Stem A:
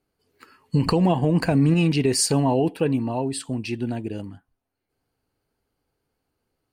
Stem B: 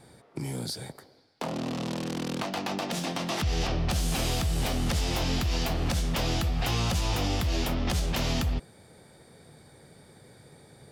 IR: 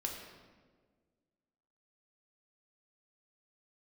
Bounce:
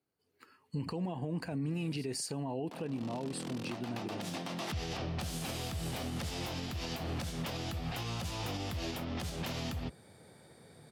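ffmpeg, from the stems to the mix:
-filter_complex "[0:a]volume=-9.5dB,asplit=2[a][b];[1:a]equalizer=f=6.3k:t=o:w=0.77:g=-2,adelay=1300,volume=-3.5dB[c];[b]apad=whole_len=538809[d];[c][d]sidechaincompress=threshold=-34dB:ratio=8:attack=8.9:release=677[e];[a][e]amix=inputs=2:normalize=0,highpass=f=73:w=0.5412,highpass=f=73:w=1.3066,alimiter=level_in=4.5dB:limit=-24dB:level=0:latency=1:release=164,volume=-4.5dB"

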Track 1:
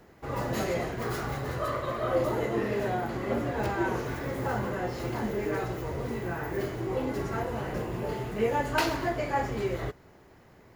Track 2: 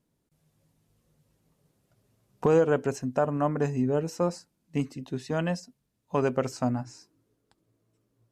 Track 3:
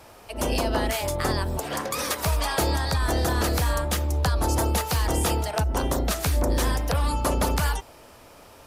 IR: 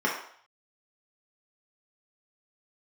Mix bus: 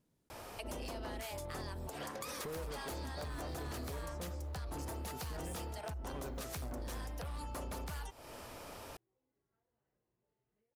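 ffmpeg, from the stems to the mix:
-filter_complex "[0:a]acompressor=threshold=-38dB:ratio=6,adelay=2200,volume=-12dB[a];[1:a]acontrast=39,volume=-8dB,asplit=2[b][c];[2:a]adelay=300,volume=-0.5dB[d];[c]apad=whole_len=571122[e];[a][e]sidechaingate=range=-33dB:threshold=-60dB:ratio=16:detection=peak[f];[b][d]amix=inputs=2:normalize=0,volume=21dB,asoftclip=hard,volume=-21dB,acompressor=threshold=-40dB:ratio=2.5,volume=0dB[g];[f][g]amix=inputs=2:normalize=0,acompressor=threshold=-42dB:ratio=3"

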